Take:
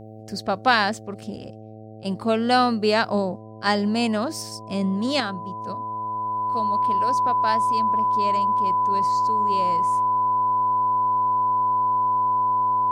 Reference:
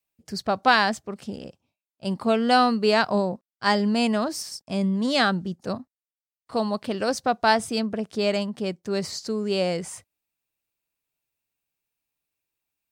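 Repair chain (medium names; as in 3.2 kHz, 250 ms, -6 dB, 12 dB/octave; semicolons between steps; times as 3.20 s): de-hum 109 Hz, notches 7; band-stop 1 kHz, Q 30; gain correction +7.5 dB, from 5.20 s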